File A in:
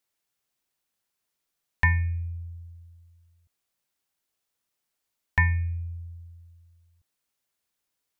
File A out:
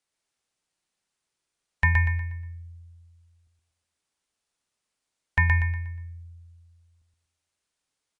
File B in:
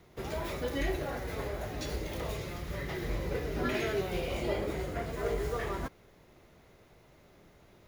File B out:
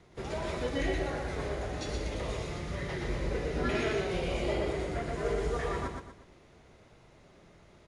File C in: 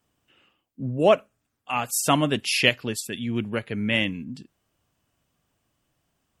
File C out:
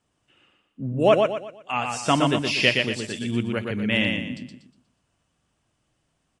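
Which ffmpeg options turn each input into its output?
-filter_complex "[0:a]aecho=1:1:120|240|360|480|600:0.631|0.227|0.0818|0.0294|0.0106,acrossover=split=6200[link_01][link_02];[link_02]acompressor=threshold=-45dB:ratio=4:attack=1:release=60[link_03];[link_01][link_03]amix=inputs=2:normalize=0" -ar 22050 -c:a aac -b:a 64k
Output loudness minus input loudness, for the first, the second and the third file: +2.0, +1.5, +0.5 LU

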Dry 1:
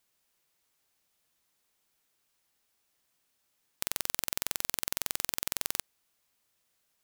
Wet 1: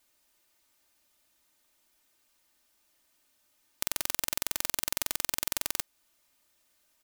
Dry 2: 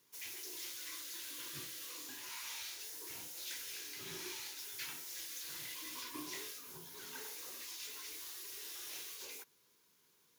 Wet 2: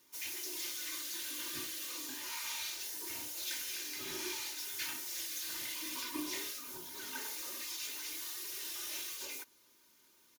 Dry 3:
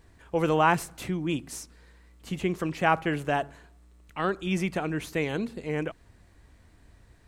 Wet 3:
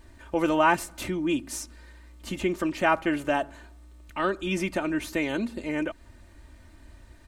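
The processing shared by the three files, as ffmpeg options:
-filter_complex "[0:a]aecho=1:1:3.3:0.66,asplit=2[link_01][link_02];[link_02]acompressor=threshold=-35dB:ratio=6,volume=-2dB[link_03];[link_01][link_03]amix=inputs=2:normalize=0,volume=-1.5dB"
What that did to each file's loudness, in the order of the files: +1.5, +5.0, +1.0 LU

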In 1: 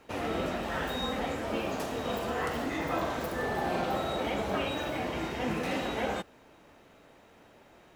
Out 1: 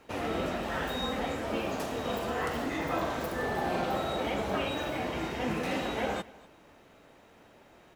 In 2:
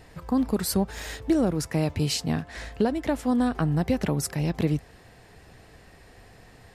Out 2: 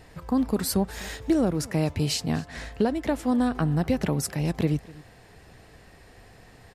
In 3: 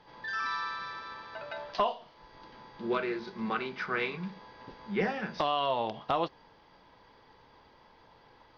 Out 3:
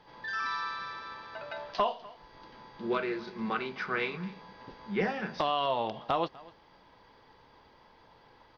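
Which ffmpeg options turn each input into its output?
-af "aecho=1:1:248:0.0841"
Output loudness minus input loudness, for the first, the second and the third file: 0.0, 0.0, 0.0 LU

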